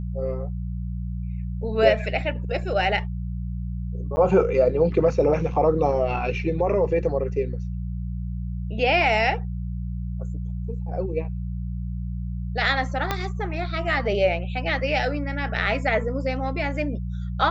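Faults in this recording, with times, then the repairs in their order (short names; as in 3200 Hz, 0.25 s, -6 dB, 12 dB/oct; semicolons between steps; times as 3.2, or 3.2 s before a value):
hum 60 Hz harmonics 3 -29 dBFS
4.16–4.17 gap 10 ms
13.11 pop -9 dBFS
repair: de-click; de-hum 60 Hz, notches 3; interpolate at 4.16, 10 ms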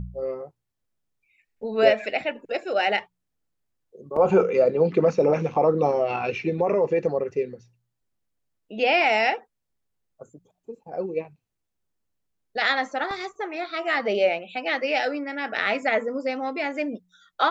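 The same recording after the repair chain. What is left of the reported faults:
13.11 pop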